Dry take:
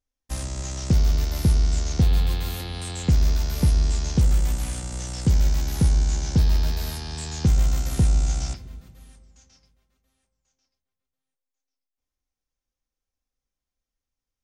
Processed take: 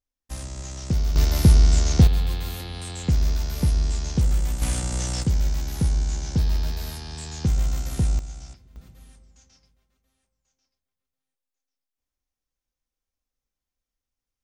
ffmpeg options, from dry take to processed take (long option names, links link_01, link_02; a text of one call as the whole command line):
ffmpeg -i in.wav -af "asetnsamples=nb_out_samples=441:pad=0,asendcmd='1.16 volume volume 5dB;2.07 volume volume -2dB;4.62 volume volume 5dB;5.23 volume volume -3dB;8.19 volume volume -13dB;8.76 volume volume -1dB',volume=-4dB" out.wav